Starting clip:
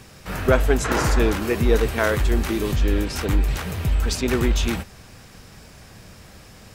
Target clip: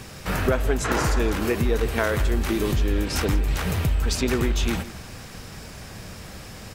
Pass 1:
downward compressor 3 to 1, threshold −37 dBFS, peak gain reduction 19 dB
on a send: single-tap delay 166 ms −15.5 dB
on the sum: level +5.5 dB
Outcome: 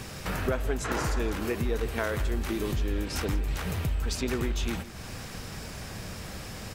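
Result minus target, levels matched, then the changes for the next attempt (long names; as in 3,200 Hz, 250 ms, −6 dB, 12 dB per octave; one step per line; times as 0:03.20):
downward compressor: peak gain reduction +6.5 dB
change: downward compressor 3 to 1, threshold −27 dBFS, peak gain reduction 12 dB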